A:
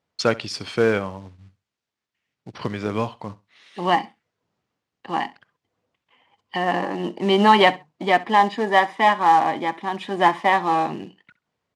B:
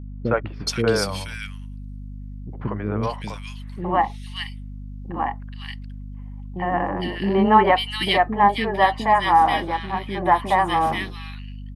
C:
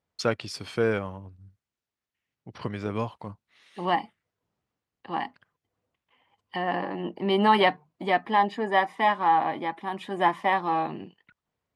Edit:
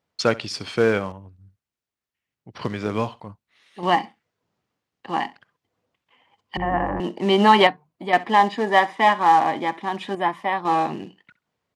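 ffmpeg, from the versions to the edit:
-filter_complex "[2:a]asplit=4[a][b][c][d];[0:a]asplit=6[e][f][g][h][i][j];[e]atrim=end=1.122[k];[a]atrim=start=1.118:end=2.562[l];[f]atrim=start=2.558:end=3.202[m];[b]atrim=start=3.198:end=3.832[n];[g]atrim=start=3.828:end=6.572[o];[1:a]atrim=start=6.568:end=7.002[p];[h]atrim=start=6.998:end=7.672[q];[c]atrim=start=7.668:end=8.132[r];[i]atrim=start=8.128:end=10.152[s];[d]atrim=start=10.148:end=10.652[t];[j]atrim=start=10.648[u];[k][l]acrossfade=d=0.004:c1=hsin:c2=hsin[v];[v][m]acrossfade=d=0.004:c1=hsin:c2=hsin[w];[w][n]acrossfade=d=0.004:c1=hsin:c2=hsin[x];[x][o]acrossfade=d=0.004:c1=hsin:c2=hsin[y];[y][p]acrossfade=d=0.004:c1=hsin:c2=hsin[z];[z][q]acrossfade=d=0.004:c1=hsin:c2=hsin[aa];[aa][r]acrossfade=d=0.004:c1=hsin:c2=hsin[ab];[ab][s]acrossfade=d=0.004:c1=hsin:c2=hsin[ac];[ac][t]acrossfade=d=0.004:c1=hsin:c2=hsin[ad];[ad][u]acrossfade=d=0.004:c1=hsin:c2=hsin"

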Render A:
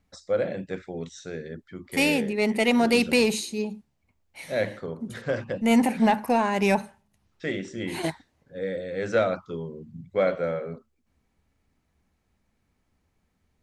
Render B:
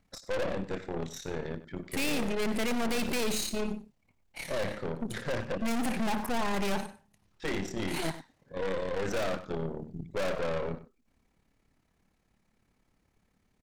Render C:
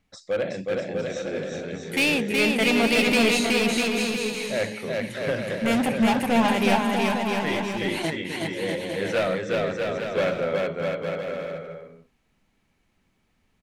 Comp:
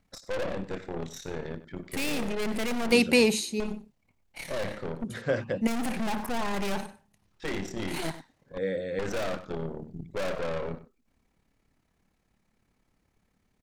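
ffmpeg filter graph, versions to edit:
-filter_complex "[0:a]asplit=3[a][b][c];[1:a]asplit=4[d][e][f][g];[d]atrim=end=2.922[h];[a]atrim=start=2.918:end=3.602[i];[e]atrim=start=3.598:end=5.042[j];[b]atrim=start=5.038:end=5.672[k];[f]atrim=start=5.668:end=8.582[l];[c]atrim=start=8.578:end=8.992[m];[g]atrim=start=8.988[n];[h][i]acrossfade=d=0.004:c1=hsin:c2=hsin[o];[o][j]acrossfade=d=0.004:c1=hsin:c2=hsin[p];[p][k]acrossfade=d=0.004:c1=hsin:c2=hsin[q];[q][l]acrossfade=d=0.004:c1=hsin:c2=hsin[r];[r][m]acrossfade=d=0.004:c1=hsin:c2=hsin[s];[s][n]acrossfade=d=0.004:c1=hsin:c2=hsin"

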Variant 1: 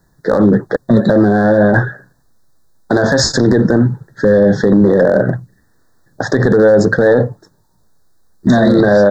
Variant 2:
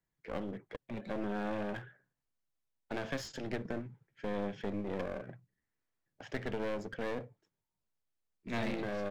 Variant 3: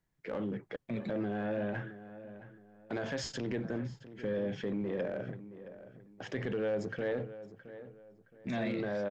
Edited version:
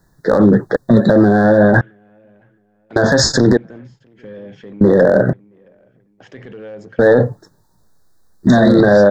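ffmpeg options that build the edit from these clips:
-filter_complex "[2:a]asplit=3[a][b][c];[0:a]asplit=4[d][e][f][g];[d]atrim=end=1.812[h];[a]atrim=start=1.808:end=2.962[i];[e]atrim=start=2.958:end=3.572[j];[b]atrim=start=3.568:end=4.812[k];[f]atrim=start=4.808:end=5.332[l];[c]atrim=start=5.328:end=6.992[m];[g]atrim=start=6.988[n];[h][i]acrossfade=d=0.004:c1=hsin:c2=hsin[o];[o][j]acrossfade=d=0.004:c1=hsin:c2=hsin[p];[p][k]acrossfade=d=0.004:c1=hsin:c2=hsin[q];[q][l]acrossfade=d=0.004:c1=hsin:c2=hsin[r];[r][m]acrossfade=d=0.004:c1=hsin:c2=hsin[s];[s][n]acrossfade=d=0.004:c1=hsin:c2=hsin"

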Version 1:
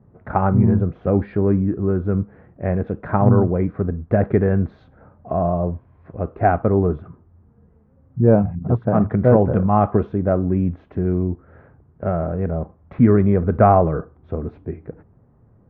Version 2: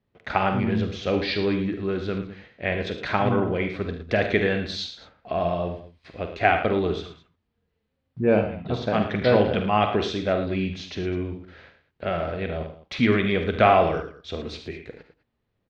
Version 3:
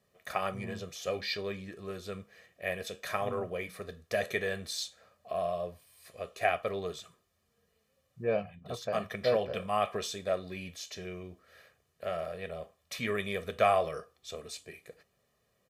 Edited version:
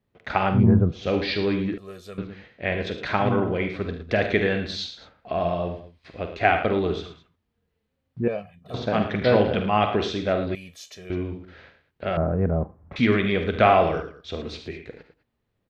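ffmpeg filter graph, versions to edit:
-filter_complex "[0:a]asplit=2[a][b];[2:a]asplit=3[c][d][e];[1:a]asplit=6[f][g][h][i][j][k];[f]atrim=end=0.7[l];[a]atrim=start=0.46:end=1.1[m];[g]atrim=start=0.86:end=1.782[n];[c]atrim=start=1.778:end=2.182[o];[h]atrim=start=2.178:end=8.282[p];[d]atrim=start=8.278:end=8.742[q];[i]atrim=start=8.738:end=10.552[r];[e]atrim=start=10.548:end=11.102[s];[j]atrim=start=11.098:end=12.172[t];[b]atrim=start=12.168:end=12.962[u];[k]atrim=start=12.958[v];[l][m]acrossfade=d=0.24:c1=tri:c2=tri[w];[w][n]acrossfade=d=0.24:c1=tri:c2=tri[x];[x][o]acrossfade=d=0.004:c1=hsin:c2=hsin[y];[y][p]acrossfade=d=0.004:c1=hsin:c2=hsin[z];[z][q]acrossfade=d=0.004:c1=hsin:c2=hsin[aa];[aa][r]acrossfade=d=0.004:c1=hsin:c2=hsin[ab];[ab][s]acrossfade=d=0.004:c1=hsin:c2=hsin[ac];[ac][t]acrossfade=d=0.004:c1=hsin:c2=hsin[ad];[ad][u]acrossfade=d=0.004:c1=hsin:c2=hsin[ae];[ae][v]acrossfade=d=0.004:c1=hsin:c2=hsin"

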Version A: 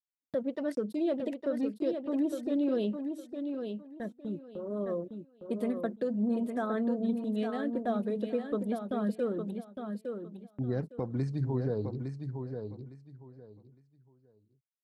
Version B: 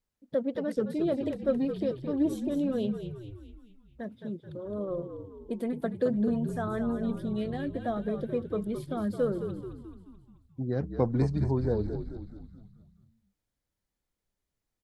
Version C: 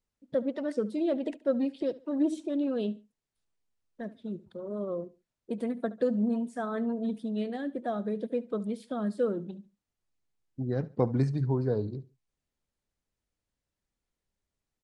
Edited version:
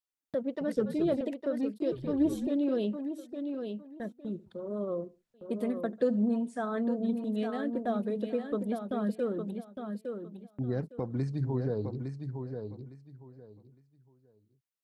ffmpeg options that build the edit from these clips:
-filter_complex "[1:a]asplit=2[a][b];[2:a]asplit=2[c][d];[0:a]asplit=5[e][f][g][h][i];[e]atrim=end=0.612[j];[a]atrim=start=0.608:end=1.212[k];[f]atrim=start=1.208:end=1.922[l];[b]atrim=start=1.918:end=2.472[m];[g]atrim=start=2.468:end=4.312[n];[c]atrim=start=4.308:end=5.342[o];[h]atrim=start=5.338:end=5.932[p];[d]atrim=start=5.928:end=6.782[q];[i]atrim=start=6.778[r];[j][k]acrossfade=d=0.004:c1=hsin:c2=hsin[s];[s][l]acrossfade=d=0.004:c1=hsin:c2=hsin[t];[t][m]acrossfade=d=0.004:c1=hsin:c2=hsin[u];[u][n]acrossfade=d=0.004:c1=hsin:c2=hsin[v];[v][o]acrossfade=d=0.004:c1=hsin:c2=hsin[w];[w][p]acrossfade=d=0.004:c1=hsin:c2=hsin[x];[x][q]acrossfade=d=0.004:c1=hsin:c2=hsin[y];[y][r]acrossfade=d=0.004:c1=hsin:c2=hsin"

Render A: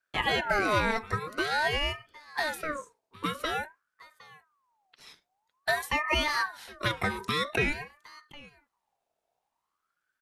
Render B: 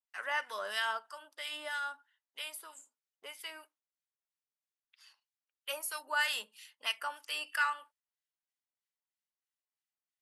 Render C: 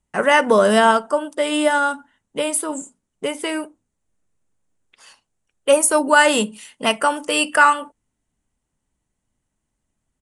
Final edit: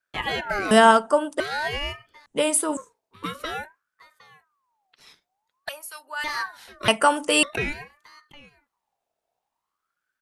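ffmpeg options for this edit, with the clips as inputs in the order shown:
-filter_complex "[2:a]asplit=3[a][b][c];[0:a]asplit=5[d][e][f][g][h];[d]atrim=end=0.712[i];[a]atrim=start=0.708:end=1.402[j];[e]atrim=start=1.398:end=2.262[k];[b]atrim=start=2.258:end=2.772[l];[f]atrim=start=2.768:end=5.692[m];[1:a]atrim=start=5.688:end=6.242[n];[g]atrim=start=6.238:end=6.882[o];[c]atrim=start=6.878:end=7.432[p];[h]atrim=start=7.428[q];[i][j]acrossfade=d=0.004:c1=hsin:c2=hsin[r];[r][k]acrossfade=d=0.004:c1=hsin:c2=hsin[s];[s][l]acrossfade=d=0.004:c1=hsin:c2=hsin[t];[t][m]acrossfade=d=0.004:c1=hsin:c2=hsin[u];[u][n]acrossfade=d=0.004:c1=hsin:c2=hsin[v];[v][o]acrossfade=d=0.004:c1=hsin:c2=hsin[w];[w][p]acrossfade=d=0.004:c1=hsin:c2=hsin[x];[x][q]acrossfade=d=0.004:c1=hsin:c2=hsin"

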